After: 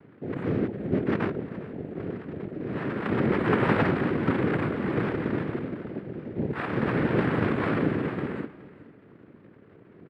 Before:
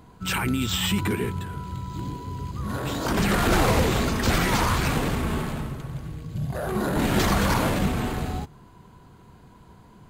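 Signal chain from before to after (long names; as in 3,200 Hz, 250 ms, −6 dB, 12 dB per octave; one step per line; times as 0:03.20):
Butterworth low-pass 700 Hz 48 dB per octave
cochlear-implant simulation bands 3
repeating echo 418 ms, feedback 26%, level −18.5 dB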